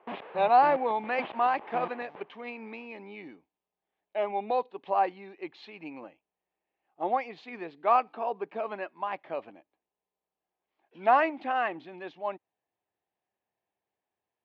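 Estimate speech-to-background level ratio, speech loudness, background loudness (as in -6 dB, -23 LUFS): 13.5 dB, -29.0 LUFS, -42.5 LUFS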